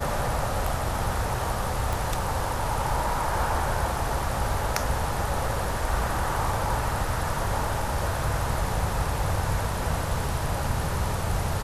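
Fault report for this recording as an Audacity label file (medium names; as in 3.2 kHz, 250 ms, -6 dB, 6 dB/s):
1.930000	1.930000	pop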